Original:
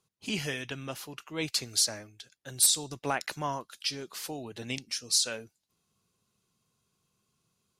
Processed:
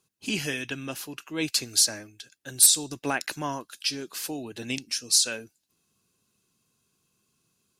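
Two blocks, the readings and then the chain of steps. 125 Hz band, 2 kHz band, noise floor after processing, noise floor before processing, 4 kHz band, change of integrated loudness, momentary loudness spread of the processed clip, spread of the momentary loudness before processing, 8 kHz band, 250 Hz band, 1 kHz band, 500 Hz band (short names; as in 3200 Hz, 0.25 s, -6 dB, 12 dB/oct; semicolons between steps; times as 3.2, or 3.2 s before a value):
+1.0 dB, +4.5 dB, -74 dBFS, -79 dBFS, +4.0 dB, +5.0 dB, 18 LU, 17 LU, +6.0 dB, +5.5 dB, +0.5 dB, +2.0 dB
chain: high shelf 4500 Hz +7.5 dB; small resonant body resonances 290/1600/2600 Hz, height 7 dB, ringing for 20 ms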